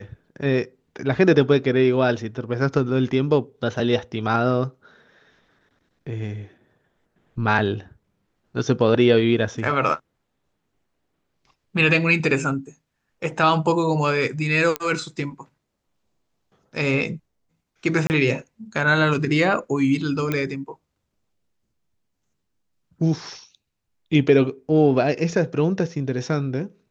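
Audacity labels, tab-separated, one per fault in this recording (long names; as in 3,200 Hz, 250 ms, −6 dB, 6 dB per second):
14.760000	14.760000	click −8 dBFS
18.070000	18.100000	drop-out 29 ms
20.320000	20.320000	click −11 dBFS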